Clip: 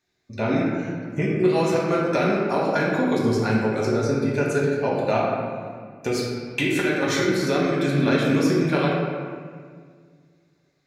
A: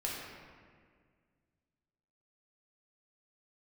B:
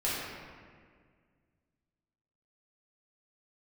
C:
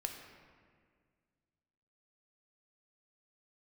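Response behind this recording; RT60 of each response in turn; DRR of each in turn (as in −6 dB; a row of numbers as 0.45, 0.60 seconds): A; 1.9, 1.8, 1.9 seconds; −4.5, −9.0, 3.0 decibels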